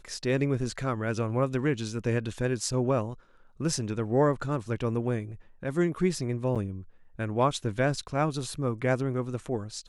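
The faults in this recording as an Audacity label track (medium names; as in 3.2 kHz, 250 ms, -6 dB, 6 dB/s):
6.550000	6.560000	dropout 6.9 ms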